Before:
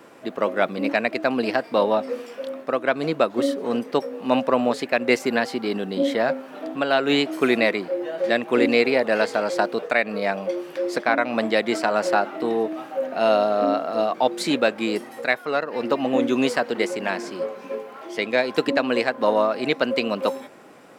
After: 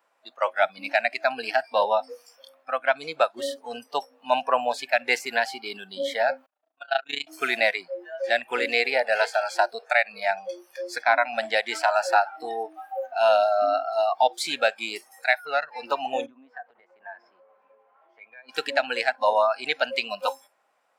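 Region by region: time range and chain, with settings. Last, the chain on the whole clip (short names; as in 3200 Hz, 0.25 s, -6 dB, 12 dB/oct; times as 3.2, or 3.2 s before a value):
6.46–7.27 AM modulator 28 Hz, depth 80% + notches 60/120/180/240/300/360/420 Hz + upward expander 2.5:1, over -36 dBFS
16.26–18.49 Bessel low-pass 1400 Hz + compressor 8:1, threshold -29 dBFS
whole clip: HPF 230 Hz 6 dB/oct; spectral noise reduction 20 dB; resonant low shelf 490 Hz -13 dB, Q 1.5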